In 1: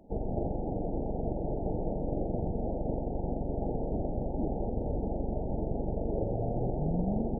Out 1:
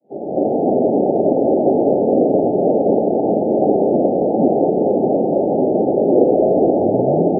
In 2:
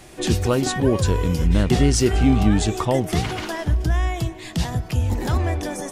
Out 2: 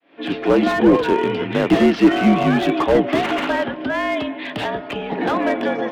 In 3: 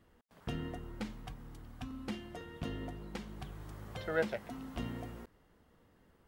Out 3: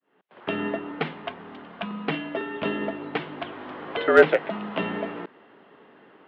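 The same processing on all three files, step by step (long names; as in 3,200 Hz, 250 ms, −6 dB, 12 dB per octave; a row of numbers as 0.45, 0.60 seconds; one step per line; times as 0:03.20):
fade in at the beginning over 0.63 s
single-sideband voice off tune −56 Hz 310–3,400 Hz
slew-rate limiting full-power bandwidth 57 Hz
normalise the peak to −1.5 dBFS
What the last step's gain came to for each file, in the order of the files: +22.5, +9.5, +18.0 decibels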